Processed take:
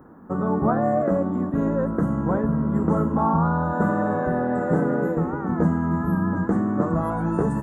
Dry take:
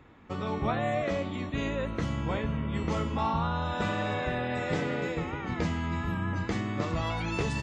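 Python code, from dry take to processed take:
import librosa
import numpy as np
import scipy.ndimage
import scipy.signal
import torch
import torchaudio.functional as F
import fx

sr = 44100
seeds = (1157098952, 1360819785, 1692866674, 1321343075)

y = fx.curve_eq(x, sr, hz=(120.0, 170.0, 400.0, 1000.0, 1600.0, 2300.0, 5000.0, 11000.0), db=(0, 13, 9, 7, 5, -23, -24, 14))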